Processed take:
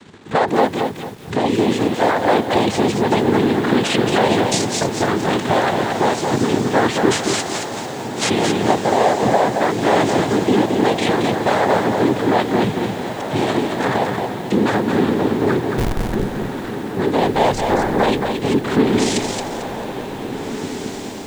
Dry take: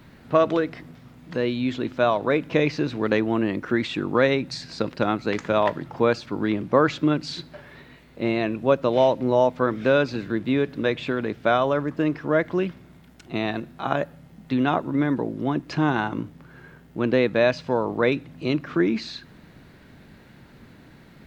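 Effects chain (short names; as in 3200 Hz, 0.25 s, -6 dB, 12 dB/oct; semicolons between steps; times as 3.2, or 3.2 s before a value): 7.1–8.28 spectral contrast lowered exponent 0.17; compressor 2:1, threshold -27 dBFS, peak gain reduction 8.5 dB; sample leveller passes 3; noise vocoder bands 6; 15.69–16.13 Schmitt trigger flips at -13 dBFS; on a send: diffused feedback echo 1.765 s, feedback 43%, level -9 dB; on the sum: lo-fi delay 0.223 s, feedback 35%, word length 7-bit, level -4.5 dB; gain +1.5 dB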